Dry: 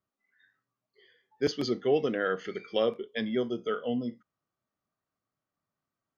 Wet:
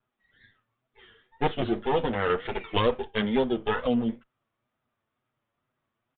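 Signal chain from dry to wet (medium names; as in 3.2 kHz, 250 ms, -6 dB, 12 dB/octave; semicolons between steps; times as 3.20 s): comb filter that takes the minimum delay 8.4 ms; in parallel at -1 dB: compression, threshold -39 dBFS, peak gain reduction 15.5 dB; 1.64–2.30 s: on the sum: feedback comb 54 Hz, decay 0.22 s, harmonics all, mix 50%; wow and flutter 110 cents; resampled via 8 kHz; trim +4 dB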